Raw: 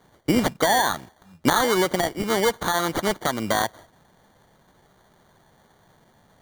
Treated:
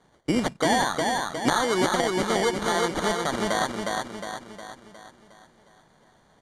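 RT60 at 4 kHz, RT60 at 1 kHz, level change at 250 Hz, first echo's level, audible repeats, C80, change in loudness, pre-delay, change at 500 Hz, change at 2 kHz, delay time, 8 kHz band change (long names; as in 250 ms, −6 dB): no reverb audible, no reverb audible, −1.5 dB, −3.0 dB, 6, no reverb audible, −2.5 dB, no reverb audible, −1.5 dB, −1.5 dB, 360 ms, −2.0 dB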